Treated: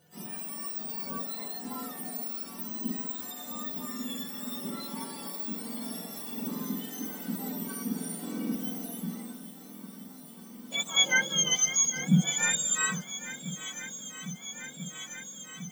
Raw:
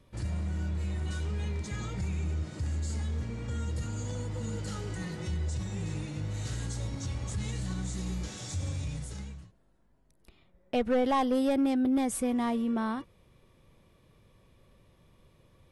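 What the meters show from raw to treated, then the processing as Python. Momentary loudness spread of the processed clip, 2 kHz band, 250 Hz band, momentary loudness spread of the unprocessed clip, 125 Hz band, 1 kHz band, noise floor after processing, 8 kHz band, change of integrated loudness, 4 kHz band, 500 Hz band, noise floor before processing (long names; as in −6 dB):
16 LU, +11.5 dB, −2.5 dB, 10 LU, −5.5 dB, −5.0 dB, −48 dBFS, +15.0 dB, +2.0 dB, +13.5 dB, −9.5 dB, −65 dBFS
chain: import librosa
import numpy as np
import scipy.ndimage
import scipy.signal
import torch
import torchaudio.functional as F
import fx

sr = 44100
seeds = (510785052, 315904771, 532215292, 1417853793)

y = fx.octave_mirror(x, sr, pivot_hz=1300.0)
y = fx.hpss(y, sr, part='percussive', gain_db=-18)
y = fx.echo_swing(y, sr, ms=1341, ratio=1.5, feedback_pct=75, wet_db=-16)
y = y * 10.0 ** (6.0 / 20.0)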